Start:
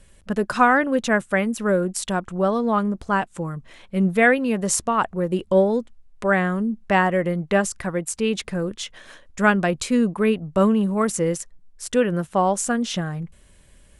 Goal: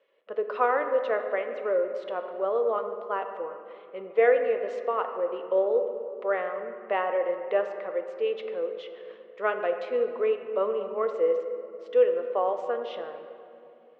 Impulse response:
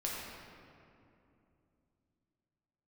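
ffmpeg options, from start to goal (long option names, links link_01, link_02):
-filter_complex "[0:a]highpass=frequency=450:width=0.5412,highpass=frequency=450:width=1.3066,equalizer=frequency=470:width_type=q:width=4:gain=9,equalizer=frequency=860:width_type=q:width=4:gain=-6,equalizer=frequency=1600:width_type=q:width=4:gain=-10,equalizer=frequency=2400:width_type=q:width=4:gain=-5,lowpass=frequency=2800:width=0.5412,lowpass=frequency=2800:width=1.3066,asplit=2[link_01][link_02];[1:a]atrim=start_sample=2205,highshelf=frequency=7000:gain=-11[link_03];[link_02][link_03]afir=irnorm=-1:irlink=0,volume=-5dB[link_04];[link_01][link_04]amix=inputs=2:normalize=0,volume=-8.5dB"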